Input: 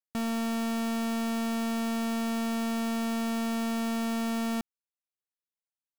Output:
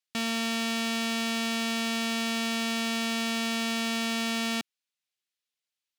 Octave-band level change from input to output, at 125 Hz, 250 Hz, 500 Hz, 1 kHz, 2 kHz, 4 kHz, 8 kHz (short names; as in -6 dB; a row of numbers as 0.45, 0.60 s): n/a, -2.0 dB, -0.5 dB, +0.5 dB, +8.5 dB, +11.0 dB, +6.5 dB